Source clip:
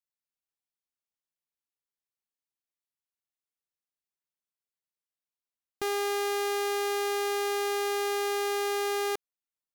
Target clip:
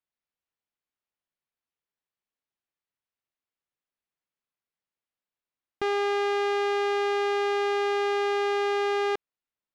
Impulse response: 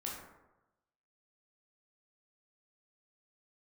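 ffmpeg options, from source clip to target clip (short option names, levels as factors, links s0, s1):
-af "lowpass=3200,volume=1.58"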